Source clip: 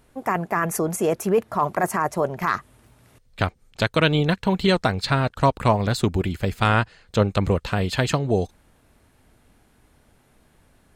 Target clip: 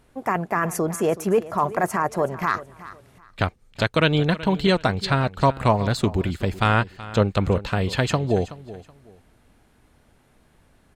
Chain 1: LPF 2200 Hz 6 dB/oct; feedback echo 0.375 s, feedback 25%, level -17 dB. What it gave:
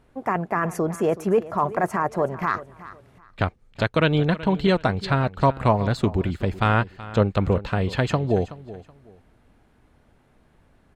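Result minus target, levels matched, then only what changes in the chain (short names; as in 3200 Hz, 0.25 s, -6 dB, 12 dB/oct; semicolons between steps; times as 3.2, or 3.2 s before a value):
8000 Hz band -8.0 dB
change: LPF 8200 Hz 6 dB/oct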